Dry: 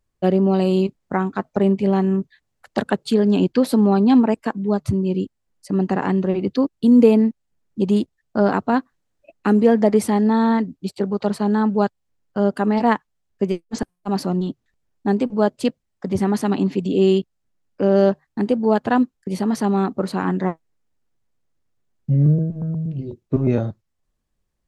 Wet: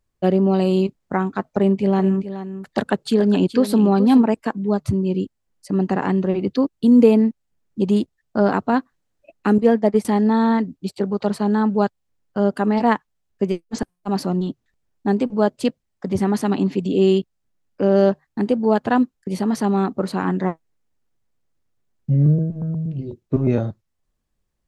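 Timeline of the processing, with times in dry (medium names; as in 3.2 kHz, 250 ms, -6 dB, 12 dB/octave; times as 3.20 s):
1.48–4.22 s: delay 424 ms -12 dB
9.58–10.05 s: expander -13 dBFS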